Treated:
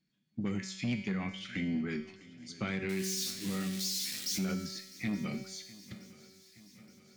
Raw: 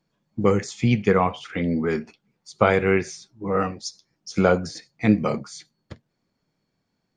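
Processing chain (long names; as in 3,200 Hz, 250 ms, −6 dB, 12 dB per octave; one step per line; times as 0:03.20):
0:02.89–0:04.45: spike at every zero crossing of −17 dBFS
octave-band graphic EQ 125/250/500/1,000/2,000/4,000/8,000 Hz +6/+10/−10/−11/+6/+7/+5 dB
in parallel at −1.5 dB: downward compressor, threshold −26 dBFS, peak gain reduction 19.5 dB
on the sum: bass and treble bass −5 dB, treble −4 dB
harmonic generator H 5 −19 dB, 8 −33 dB, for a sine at −1.5 dBFS
tuned comb filter 190 Hz, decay 0.91 s, mix 80%
brickwall limiter −20 dBFS, peak gain reduction 7.5 dB
on a send: feedback echo with a long and a short gap by turns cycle 872 ms, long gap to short 3 to 1, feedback 61%, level −20.5 dB
on the sum: level −6 dB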